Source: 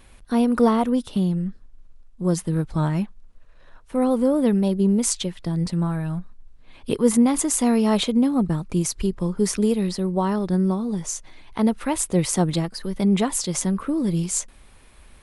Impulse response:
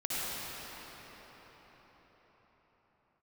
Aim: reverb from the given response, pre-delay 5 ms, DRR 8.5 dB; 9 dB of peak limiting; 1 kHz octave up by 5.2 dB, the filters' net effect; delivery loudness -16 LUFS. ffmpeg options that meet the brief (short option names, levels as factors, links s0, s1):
-filter_complex "[0:a]equalizer=f=1000:t=o:g=6.5,alimiter=limit=0.2:level=0:latency=1,asplit=2[s0][s1];[1:a]atrim=start_sample=2205,adelay=5[s2];[s1][s2]afir=irnorm=-1:irlink=0,volume=0.15[s3];[s0][s3]amix=inputs=2:normalize=0,volume=2.37"